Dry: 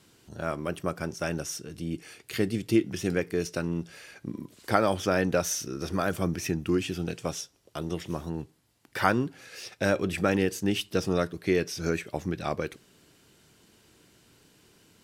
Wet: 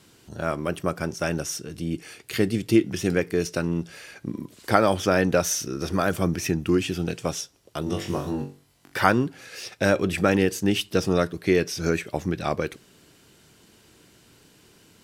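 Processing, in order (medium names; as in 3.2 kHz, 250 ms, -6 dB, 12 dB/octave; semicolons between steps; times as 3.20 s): 7.84–8.98 s: flutter echo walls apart 3.6 m, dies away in 0.34 s; trim +4.5 dB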